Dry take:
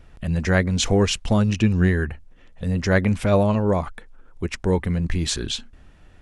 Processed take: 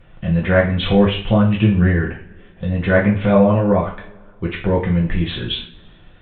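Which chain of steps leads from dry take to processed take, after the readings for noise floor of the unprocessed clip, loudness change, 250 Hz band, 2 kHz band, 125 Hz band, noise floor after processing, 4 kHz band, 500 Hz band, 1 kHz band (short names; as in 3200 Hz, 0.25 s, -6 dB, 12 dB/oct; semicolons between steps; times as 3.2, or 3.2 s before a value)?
-51 dBFS, +4.5 dB, +5.5 dB, +4.0 dB, +4.0 dB, -46 dBFS, +2.0 dB, +5.5 dB, +5.0 dB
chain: downsampling 8000 Hz; treble ducked by the level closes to 2200 Hz, closed at -14.5 dBFS; two-slope reverb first 0.39 s, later 2.1 s, from -26 dB, DRR -3.5 dB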